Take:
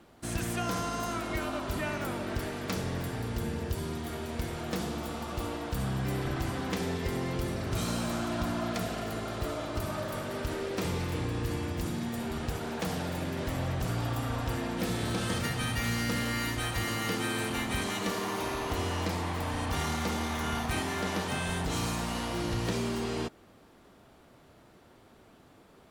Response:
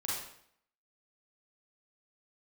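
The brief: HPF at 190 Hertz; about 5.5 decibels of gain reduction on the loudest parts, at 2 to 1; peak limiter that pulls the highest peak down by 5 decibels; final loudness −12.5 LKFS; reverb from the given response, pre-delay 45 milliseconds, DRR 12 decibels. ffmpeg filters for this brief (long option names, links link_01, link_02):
-filter_complex "[0:a]highpass=190,acompressor=threshold=-39dB:ratio=2,alimiter=level_in=5.5dB:limit=-24dB:level=0:latency=1,volume=-5.5dB,asplit=2[link_01][link_02];[1:a]atrim=start_sample=2205,adelay=45[link_03];[link_02][link_03]afir=irnorm=-1:irlink=0,volume=-15.5dB[link_04];[link_01][link_04]amix=inputs=2:normalize=0,volume=26.5dB"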